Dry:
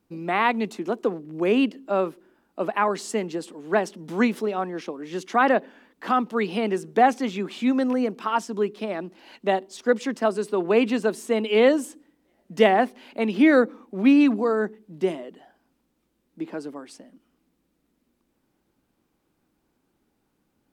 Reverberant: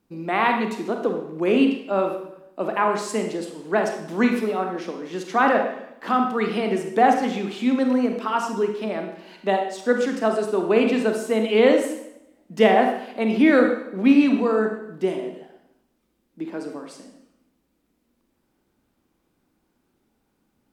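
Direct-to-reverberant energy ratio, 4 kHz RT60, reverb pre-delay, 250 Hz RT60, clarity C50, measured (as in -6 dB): 3.5 dB, 0.75 s, 30 ms, 0.90 s, 5.5 dB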